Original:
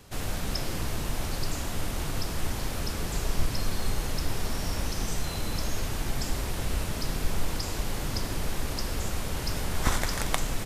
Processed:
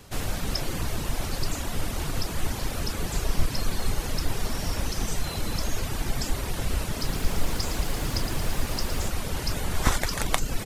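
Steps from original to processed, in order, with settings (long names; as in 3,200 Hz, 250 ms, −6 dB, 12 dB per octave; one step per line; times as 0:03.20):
reverb reduction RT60 0.63 s
0:06.89–0:09.08: feedback echo at a low word length 113 ms, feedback 80%, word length 8 bits, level −9 dB
level +3.5 dB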